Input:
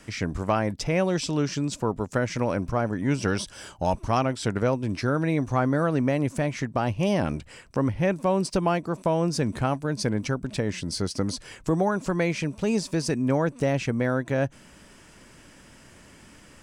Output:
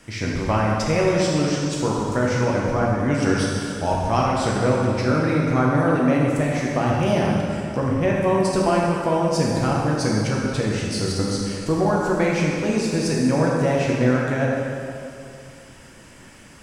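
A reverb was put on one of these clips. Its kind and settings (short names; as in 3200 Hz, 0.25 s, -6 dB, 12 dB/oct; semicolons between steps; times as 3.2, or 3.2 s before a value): plate-style reverb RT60 2.5 s, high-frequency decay 0.8×, DRR -4 dB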